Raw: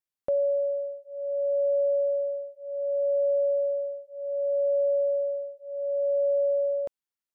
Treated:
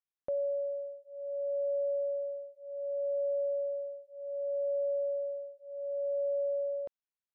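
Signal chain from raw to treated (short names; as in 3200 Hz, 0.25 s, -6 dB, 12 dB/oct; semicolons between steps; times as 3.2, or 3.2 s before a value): LPF 4000 Hz; gain -7.5 dB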